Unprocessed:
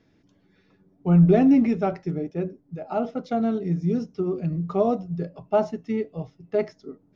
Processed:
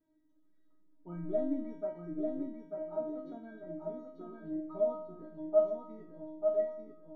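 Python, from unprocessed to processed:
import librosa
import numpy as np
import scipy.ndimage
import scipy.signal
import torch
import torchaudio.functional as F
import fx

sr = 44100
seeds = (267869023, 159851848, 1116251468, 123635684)

y = np.convolve(x, np.full(17, 1.0 / 17))[:len(x)]
y = fx.stiff_resonator(y, sr, f0_hz=310.0, decay_s=0.61, stiffness=0.002)
y = fx.echo_feedback(y, sr, ms=892, feedback_pct=32, wet_db=-4.5)
y = fx.rev_freeverb(y, sr, rt60_s=0.69, hf_ratio=0.25, predelay_ms=5, drr_db=19.0)
y = y * 10.0 ** (7.0 / 20.0)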